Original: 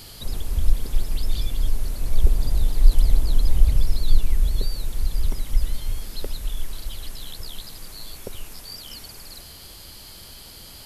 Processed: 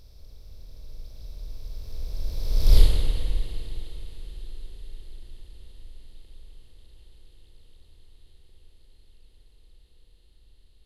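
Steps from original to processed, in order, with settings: per-bin compression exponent 0.2; Doppler pass-by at 2.78, 37 m/s, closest 2.7 m; spring tank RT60 2.8 s, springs 53 ms, chirp 55 ms, DRR 3.5 dB; gain -2.5 dB

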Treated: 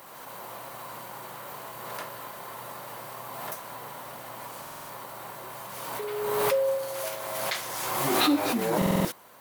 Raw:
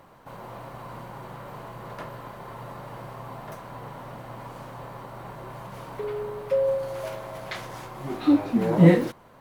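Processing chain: RIAA curve recording; stuck buffer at 4.62/8.77, samples 2048, times 5; backwards sustainer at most 25 dB/s

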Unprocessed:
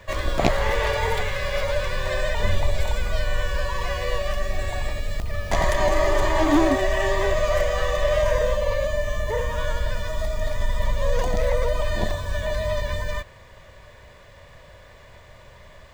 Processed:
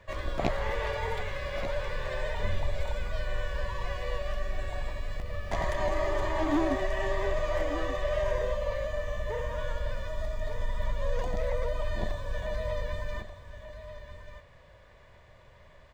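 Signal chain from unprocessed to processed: high shelf 5200 Hz -9.5 dB; echo 1.185 s -11 dB; gain -8.5 dB

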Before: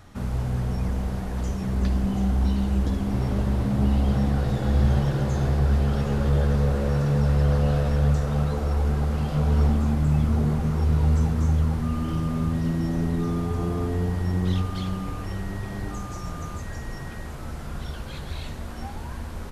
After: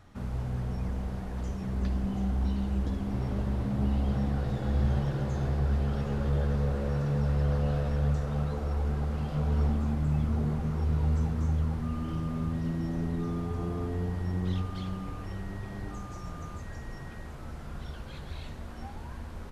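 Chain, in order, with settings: high shelf 5700 Hz -6.5 dB; gain -6.5 dB

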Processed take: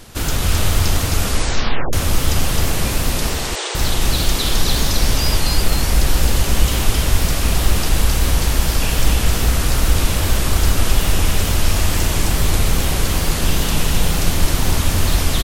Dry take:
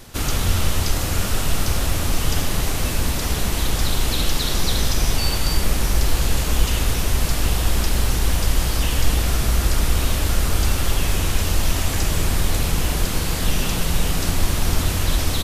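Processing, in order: wow and flutter 150 cents; 3.29–3.75 brick-wall FIR band-pass 320–9100 Hz; echo 0.263 s -3.5 dB; 1.2 tape stop 0.73 s; gain +2 dB

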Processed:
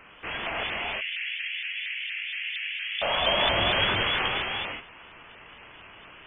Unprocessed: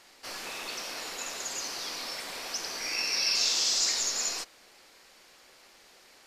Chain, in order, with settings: tracing distortion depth 0.033 ms; inverted band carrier 3300 Hz; 0.63–3.02 steep high-pass 1900 Hz 48 dB/oct; reverb, pre-delay 3 ms, DRR 0 dB; shaped vibrato saw up 4.3 Hz, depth 100 cents; gain +8.5 dB

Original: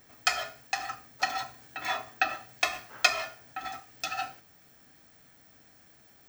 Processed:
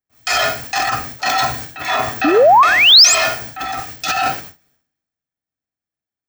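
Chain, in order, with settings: gate with hold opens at -46 dBFS; transient shaper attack -6 dB, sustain +11 dB; painted sound rise, 2.24–3.15, 270–8100 Hz -22 dBFS; maximiser +22.5 dB; three-band expander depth 70%; gain -6 dB

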